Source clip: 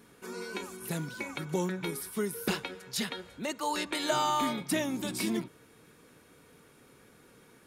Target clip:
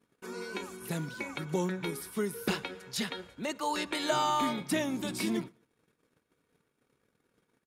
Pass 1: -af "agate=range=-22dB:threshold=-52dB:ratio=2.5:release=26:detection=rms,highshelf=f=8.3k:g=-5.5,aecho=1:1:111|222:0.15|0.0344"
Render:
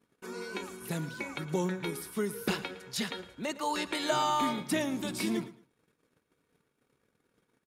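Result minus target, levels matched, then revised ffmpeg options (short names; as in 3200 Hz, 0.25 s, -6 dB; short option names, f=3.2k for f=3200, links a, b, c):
echo-to-direct +10.5 dB
-af "agate=range=-22dB:threshold=-52dB:ratio=2.5:release=26:detection=rms,highshelf=f=8.3k:g=-5.5,aecho=1:1:111|222:0.0447|0.0103"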